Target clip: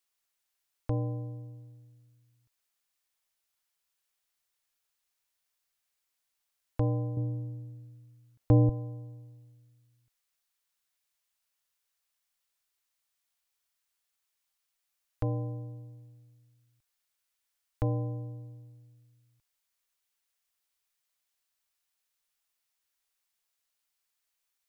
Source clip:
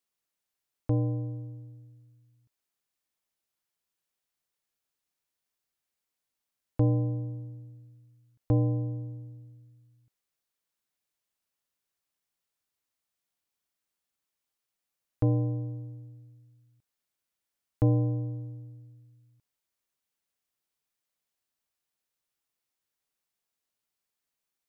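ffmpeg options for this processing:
-af "asetnsamples=n=441:p=0,asendcmd='7.17 equalizer g -2;8.69 equalizer g -14.5',equalizer=f=210:w=0.45:g=-11.5,volume=4.5dB"

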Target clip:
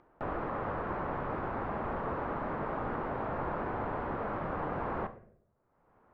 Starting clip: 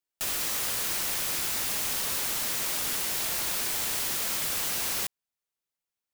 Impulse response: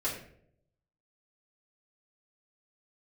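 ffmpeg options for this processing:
-filter_complex "[0:a]lowpass=f=1.2k:w=0.5412,lowpass=f=1.2k:w=1.3066,acompressor=mode=upward:threshold=-49dB:ratio=2.5,asplit=2[a][b];[1:a]atrim=start_sample=2205,adelay=29[c];[b][c]afir=irnorm=-1:irlink=0,volume=-16.5dB[d];[a][d]amix=inputs=2:normalize=0,volume=7dB"

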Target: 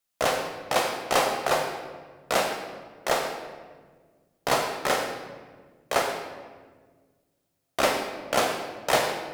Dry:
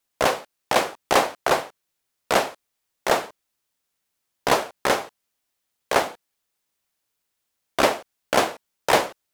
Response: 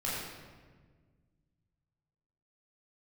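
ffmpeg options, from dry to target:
-filter_complex "[0:a]asplit=2[a][b];[1:a]atrim=start_sample=2205,lowshelf=f=80:g=-7,highshelf=f=3.2k:g=8[c];[b][c]afir=irnorm=-1:irlink=0,volume=-6.5dB[d];[a][d]amix=inputs=2:normalize=0,volume=-7.5dB"

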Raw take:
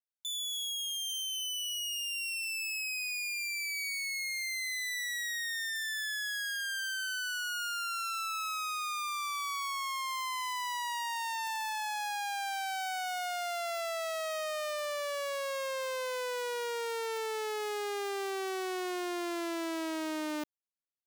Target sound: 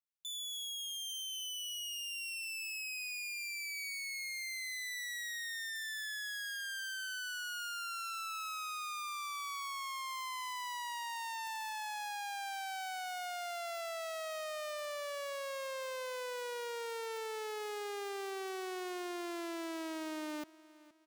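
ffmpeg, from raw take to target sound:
-af "aecho=1:1:471|942|1413:0.1|0.036|0.013,volume=-5.5dB"

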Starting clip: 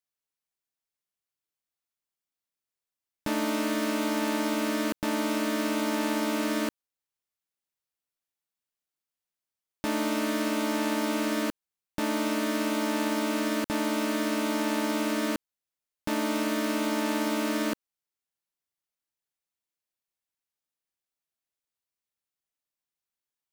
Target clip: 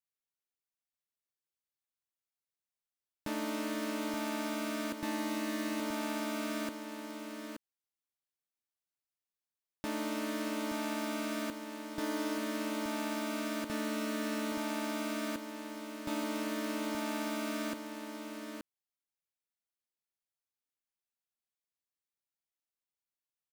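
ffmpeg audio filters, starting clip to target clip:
-af "aecho=1:1:876:0.422,volume=-8dB"

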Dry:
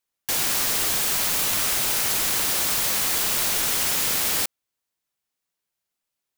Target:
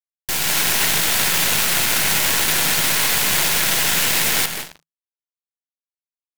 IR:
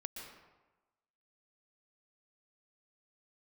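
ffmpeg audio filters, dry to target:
-filter_complex "[0:a]highpass=f=41:w=0.5412,highpass=f=41:w=1.3066[a];[1:a]atrim=start_sample=2205,asetrate=33516,aresample=44100[b];[a][b]afir=irnorm=-1:irlink=0,aeval=exprs='0.266*(cos(1*acos(clip(val(0)/0.266,-1,1)))-cos(1*PI/2))+0.00168*(cos(5*acos(clip(val(0)/0.266,-1,1)))-cos(5*PI/2))+0.0133*(cos(6*acos(clip(val(0)/0.266,-1,1)))-cos(6*PI/2))+0.0266*(cos(7*acos(clip(val(0)/0.266,-1,1)))-cos(7*PI/2))+0.0335*(cos(8*acos(clip(val(0)/0.266,-1,1)))-cos(8*PI/2))':c=same,adynamicequalizer=threshold=0.00447:dfrequency=2100:dqfactor=0.72:tfrequency=2100:tqfactor=0.72:attack=5:release=100:ratio=0.375:range=3:mode=boostabove:tftype=bell,aeval=exprs='sgn(val(0))*max(abs(val(0))-0.01,0)':c=same,equalizer=f=160:w=6.5:g=9.5,bandreject=f=1.2k:w=12,volume=8dB"

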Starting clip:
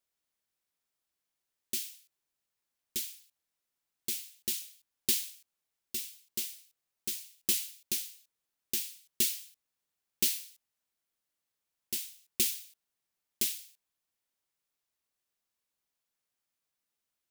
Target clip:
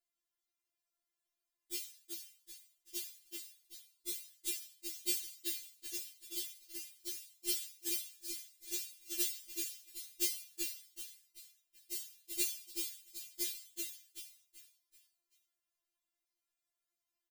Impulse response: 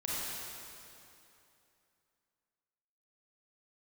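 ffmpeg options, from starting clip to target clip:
-filter_complex "[0:a]asettb=1/sr,asplit=3[a][b][c];[a]atrim=end=10.404[d];[b]atrim=start=10.4:end=12.28,asetpts=PTS-STARTPTS,afade=t=in:d=0.004:c=qsin,afade=t=out:st=1.876:d=0.004:c=qsin,acrossover=split=130|3000[e][f][g];[f]acompressor=threshold=-47dB:ratio=6[h];[e][h][g]amix=inputs=3:normalize=0[i];[c]atrim=start=12.276[j];[d][i]acrossfade=d=0.004:c1=hsin:c2=qsin[k];[k][j]acrossfade=d=0.004:c1=qsin:c2=hsin,asplit=2[l][m];[m]asplit=5[n][o][p][q][r];[n]adelay=383,afreqshift=-31,volume=-4dB[s];[o]adelay=766,afreqshift=-62,volume=-12.4dB[t];[p]adelay=1149,afreqshift=-93,volume=-20.8dB[u];[q]adelay=1532,afreqshift=-124,volume=-29.2dB[v];[r]adelay=1915,afreqshift=-155,volume=-37.6dB[w];[s][t][u][v][w]amix=inputs=5:normalize=0[x];[l][x]amix=inputs=2:normalize=0,afftfilt=real='re*4*eq(mod(b,16),0)':imag='im*4*eq(mod(b,16),0)':win_size=2048:overlap=0.75,volume=-4dB"

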